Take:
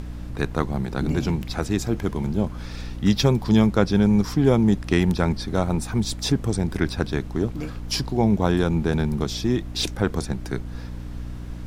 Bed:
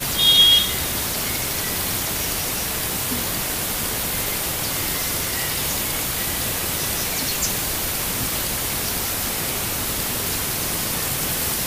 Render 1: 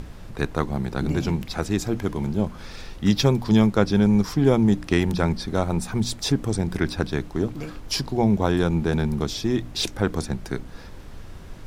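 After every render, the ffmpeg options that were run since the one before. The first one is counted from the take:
-af "bandreject=f=60:t=h:w=4,bandreject=f=120:t=h:w=4,bandreject=f=180:t=h:w=4,bandreject=f=240:t=h:w=4,bandreject=f=300:t=h:w=4"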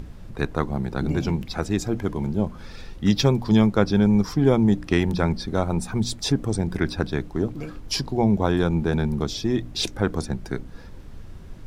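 -af "afftdn=nr=6:nf=-41"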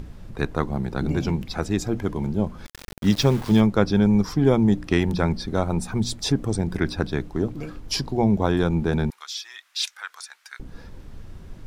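-filter_complex "[0:a]asplit=3[s0][s1][s2];[s0]afade=t=out:st=2.65:d=0.02[s3];[s1]aeval=exprs='val(0)*gte(abs(val(0)),0.0282)':c=same,afade=t=in:st=2.65:d=0.02,afade=t=out:st=3.6:d=0.02[s4];[s2]afade=t=in:st=3.6:d=0.02[s5];[s3][s4][s5]amix=inputs=3:normalize=0,asettb=1/sr,asplit=3[s6][s7][s8];[s6]atrim=end=9.104[s9];[s7]atrim=start=9.1:end=10.6,asetpts=PTS-STARTPTS,afade=t=in:d=0.004:c=qsin,afade=t=out:st=1.496:d=0.004:c=qsin,highpass=f=1300:w=0.5412,highpass=f=1300:w=1.3066[s10];[s8]atrim=start=10.596[s11];[s9][s10]acrossfade=d=0.004:c1=hsin:c2=qsin[s12];[s12][s11]acrossfade=d=0.004:c1=qsin:c2=hsin"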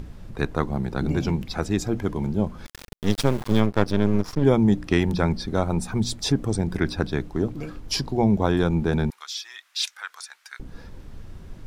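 -filter_complex "[0:a]asplit=3[s0][s1][s2];[s0]afade=t=out:st=2.87:d=0.02[s3];[s1]aeval=exprs='max(val(0),0)':c=same,afade=t=in:st=2.87:d=0.02,afade=t=out:st=4.42:d=0.02[s4];[s2]afade=t=in:st=4.42:d=0.02[s5];[s3][s4][s5]amix=inputs=3:normalize=0"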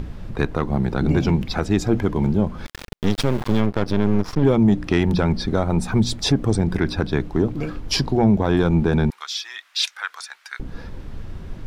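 -filter_complex "[0:a]acrossover=split=4700[s0][s1];[s0]acontrast=81[s2];[s2][s1]amix=inputs=2:normalize=0,alimiter=limit=0.398:level=0:latency=1:release=181"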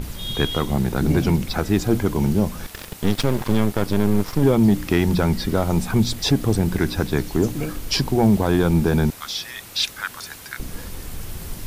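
-filter_complex "[1:a]volume=0.15[s0];[0:a][s0]amix=inputs=2:normalize=0"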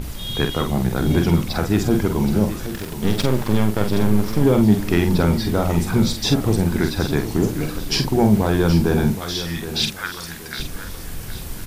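-filter_complex "[0:a]asplit=2[s0][s1];[s1]adelay=47,volume=0.473[s2];[s0][s2]amix=inputs=2:normalize=0,aecho=1:1:773|1546|2319:0.266|0.0851|0.0272"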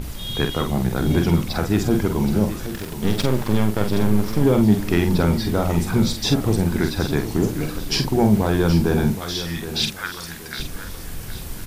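-af "volume=0.891"

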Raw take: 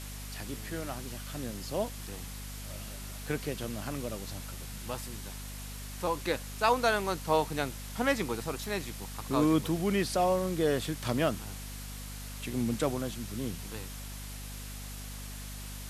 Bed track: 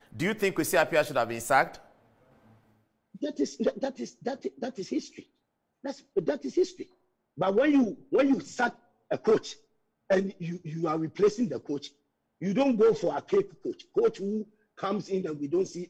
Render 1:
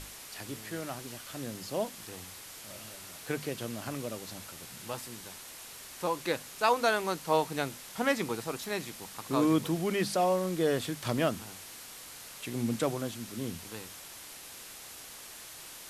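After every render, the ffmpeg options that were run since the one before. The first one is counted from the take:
-af "bandreject=f=50:t=h:w=6,bandreject=f=100:t=h:w=6,bandreject=f=150:t=h:w=6,bandreject=f=200:t=h:w=6,bandreject=f=250:t=h:w=6"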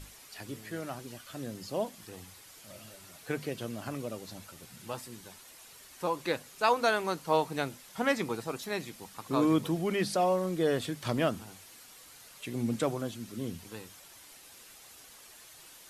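-af "afftdn=nr=8:nf=-47"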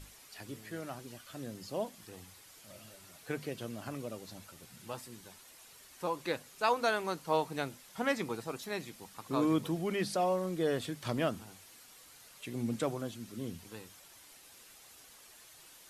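-af "volume=0.668"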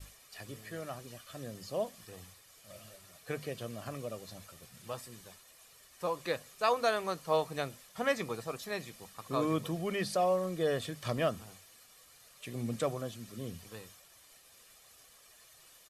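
-af "agate=range=0.0224:threshold=0.00251:ratio=3:detection=peak,aecho=1:1:1.7:0.4"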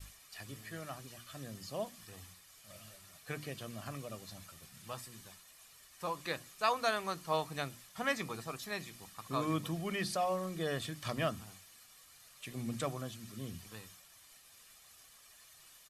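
-af "equalizer=f=490:w=1.6:g=-8,bandreject=f=60:t=h:w=6,bandreject=f=120:t=h:w=6,bandreject=f=180:t=h:w=6,bandreject=f=240:t=h:w=6,bandreject=f=300:t=h:w=6,bandreject=f=360:t=h:w=6"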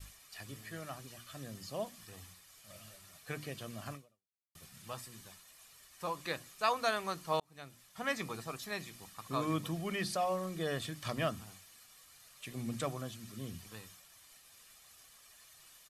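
-filter_complex "[0:a]asplit=3[s0][s1][s2];[s0]atrim=end=4.55,asetpts=PTS-STARTPTS,afade=t=out:st=3.93:d=0.62:c=exp[s3];[s1]atrim=start=4.55:end=7.4,asetpts=PTS-STARTPTS,afade=t=in:d=0.004:c=hsin,afade=t=out:st=2.846:d=0.004:c=hsin[s4];[s2]atrim=start=7.4,asetpts=PTS-STARTPTS,afade=t=in:d=0.83[s5];[s3][s4][s5]concat=n=3:v=0:a=1"

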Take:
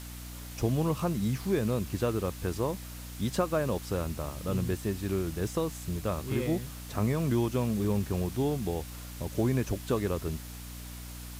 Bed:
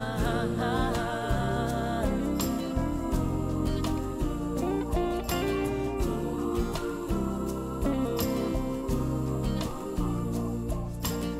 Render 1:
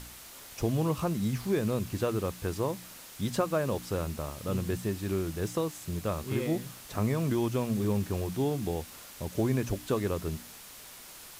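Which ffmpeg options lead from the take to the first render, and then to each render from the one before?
-af "bandreject=f=60:t=h:w=4,bandreject=f=120:t=h:w=4,bandreject=f=180:t=h:w=4,bandreject=f=240:t=h:w=4,bandreject=f=300:t=h:w=4"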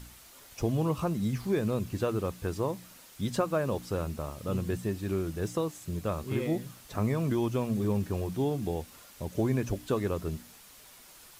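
-af "afftdn=nr=6:nf=-48"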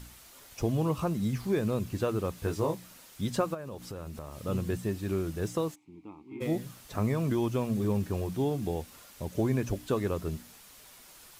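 -filter_complex "[0:a]asettb=1/sr,asplit=3[s0][s1][s2];[s0]atrim=end=2.354[s3];[s1]atrim=start=2.35:end=2.75,asetpts=PTS-STARTPTS,afade=t=in:d=0.004:c=qsin,afade=t=out:st=0.396:d=0.004:c=qsin,asplit=2[s4][s5];[s5]adelay=19,volume=0.631[s6];[s4][s6]amix=inputs=2:normalize=0,atrim=end_sample=17640[s7];[s2]atrim=start=2.746[s8];[s3][s7]acrossfade=d=0.004:c1=hsin:c2=qsin[s9];[s9][s8]acrossfade=d=0.004:c1=qsin:c2=hsin,asplit=3[s10][s11][s12];[s10]afade=t=out:st=3.53:d=0.02[s13];[s11]acompressor=threshold=0.0158:ratio=8:attack=3.2:release=140:knee=1:detection=peak,afade=t=in:st=3.53:d=0.02,afade=t=out:st=4.39:d=0.02[s14];[s12]afade=t=in:st=4.39:d=0.02[s15];[s13][s14][s15]amix=inputs=3:normalize=0,asplit=3[s16][s17][s18];[s16]afade=t=out:st=5.74:d=0.02[s19];[s17]asplit=3[s20][s21][s22];[s20]bandpass=f=300:t=q:w=8,volume=1[s23];[s21]bandpass=f=870:t=q:w=8,volume=0.501[s24];[s22]bandpass=f=2240:t=q:w=8,volume=0.355[s25];[s23][s24][s25]amix=inputs=3:normalize=0,afade=t=in:st=5.74:d=0.02,afade=t=out:st=6.4:d=0.02[s26];[s18]afade=t=in:st=6.4:d=0.02[s27];[s19][s26][s27]amix=inputs=3:normalize=0"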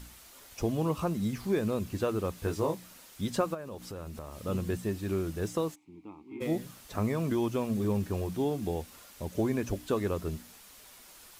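-af "equalizer=f=130:t=o:w=0.31:g=-8"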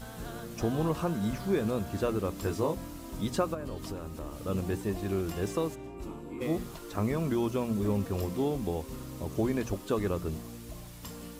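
-filter_complex "[1:a]volume=0.224[s0];[0:a][s0]amix=inputs=2:normalize=0"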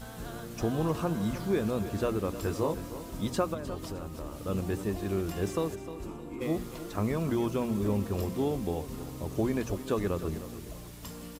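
-af "aecho=1:1:307|614|921|1228:0.224|0.0828|0.0306|0.0113"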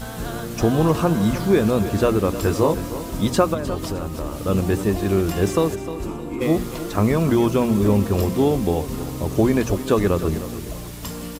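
-af "volume=3.76"

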